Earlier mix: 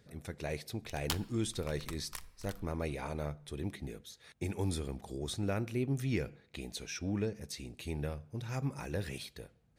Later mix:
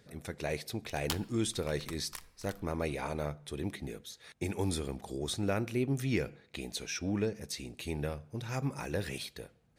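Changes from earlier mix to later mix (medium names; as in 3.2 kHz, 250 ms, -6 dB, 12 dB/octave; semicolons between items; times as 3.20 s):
speech +4.0 dB; master: add bass shelf 140 Hz -6.5 dB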